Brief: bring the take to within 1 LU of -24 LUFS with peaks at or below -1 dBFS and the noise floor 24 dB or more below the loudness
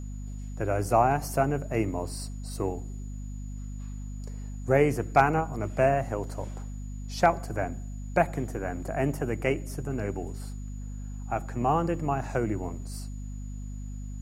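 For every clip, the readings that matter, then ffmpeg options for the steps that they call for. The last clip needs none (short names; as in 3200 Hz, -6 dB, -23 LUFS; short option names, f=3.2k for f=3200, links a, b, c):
hum 50 Hz; harmonics up to 250 Hz; hum level -34 dBFS; steady tone 6900 Hz; tone level -56 dBFS; loudness -28.5 LUFS; peak -7.5 dBFS; loudness target -24.0 LUFS
-> -af "bandreject=f=50:t=h:w=6,bandreject=f=100:t=h:w=6,bandreject=f=150:t=h:w=6,bandreject=f=200:t=h:w=6,bandreject=f=250:t=h:w=6"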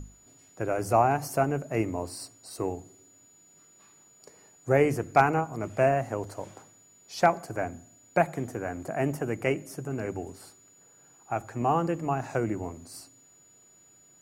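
hum none; steady tone 6900 Hz; tone level -56 dBFS
-> -af "bandreject=f=6.9k:w=30"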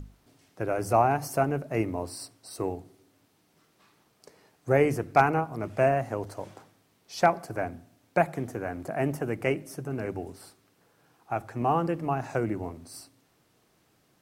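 steady tone none; loudness -28.5 LUFS; peak -7.5 dBFS; loudness target -24.0 LUFS
-> -af "volume=4.5dB"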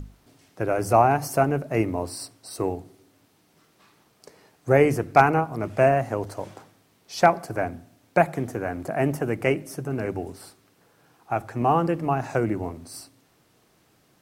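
loudness -24.0 LUFS; peak -3.0 dBFS; noise floor -63 dBFS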